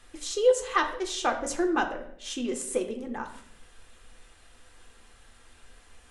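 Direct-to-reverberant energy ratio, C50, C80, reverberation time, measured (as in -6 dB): 4.0 dB, 10.0 dB, 12.5 dB, 0.70 s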